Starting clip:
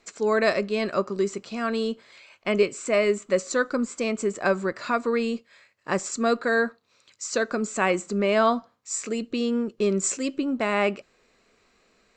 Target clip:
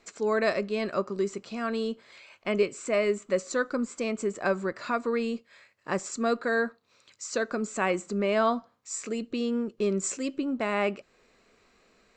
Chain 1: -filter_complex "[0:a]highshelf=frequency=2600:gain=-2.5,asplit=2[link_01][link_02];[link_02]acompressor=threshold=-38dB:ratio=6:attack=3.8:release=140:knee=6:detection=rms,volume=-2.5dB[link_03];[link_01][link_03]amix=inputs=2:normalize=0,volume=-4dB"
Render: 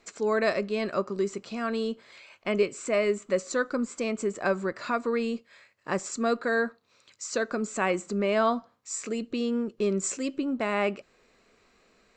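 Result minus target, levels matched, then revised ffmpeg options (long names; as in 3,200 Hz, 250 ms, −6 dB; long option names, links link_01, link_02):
downward compressor: peak gain reduction −6 dB
-filter_complex "[0:a]highshelf=frequency=2600:gain=-2.5,asplit=2[link_01][link_02];[link_02]acompressor=threshold=-45.5dB:ratio=6:attack=3.8:release=140:knee=6:detection=rms,volume=-2.5dB[link_03];[link_01][link_03]amix=inputs=2:normalize=0,volume=-4dB"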